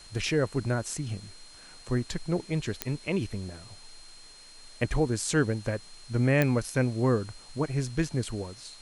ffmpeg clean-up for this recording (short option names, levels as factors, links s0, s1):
-af "adeclick=t=4,bandreject=f=4200:w=30,afwtdn=0.0025"